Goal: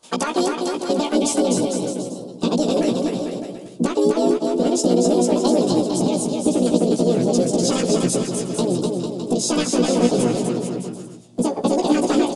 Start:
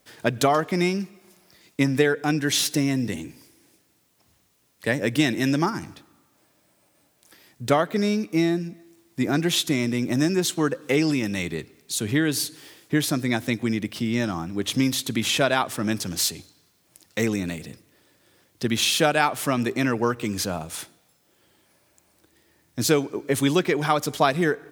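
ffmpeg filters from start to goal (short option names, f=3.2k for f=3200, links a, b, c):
-filter_complex "[0:a]highpass=f=43:p=1,asplit=2[a][b];[b]volume=14dB,asoftclip=hard,volume=-14dB,volume=-10dB[c];[a][c]amix=inputs=2:normalize=0,asubboost=boost=7.5:cutoff=180,acompressor=threshold=-18dB:ratio=8,equalizer=f=990:t=o:w=0.91:g=-12.5,asplit=3[d][e][f];[e]asetrate=33038,aresample=44100,atempo=1.33484,volume=-5dB[g];[f]asetrate=58866,aresample=44100,atempo=0.749154,volume=-12dB[h];[d][g][h]amix=inputs=3:normalize=0,asplit=2[i][j];[j]adelay=33,volume=-4dB[k];[i][k]amix=inputs=2:normalize=0,aecho=1:1:500|900|1220|1476|1681:0.631|0.398|0.251|0.158|0.1,asetrate=88200,aresample=44100,aresample=22050,aresample=44100"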